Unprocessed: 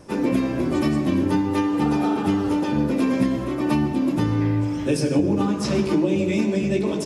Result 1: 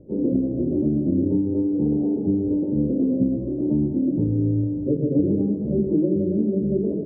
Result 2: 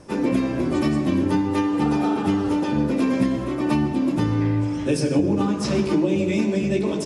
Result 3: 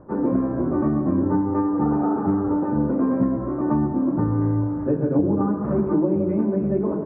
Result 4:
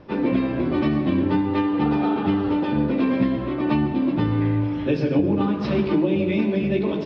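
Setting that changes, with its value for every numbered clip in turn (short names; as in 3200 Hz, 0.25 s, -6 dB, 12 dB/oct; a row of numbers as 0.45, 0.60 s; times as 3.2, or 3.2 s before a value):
steep low-pass, frequency: 530, 11000, 1400, 4100 Hz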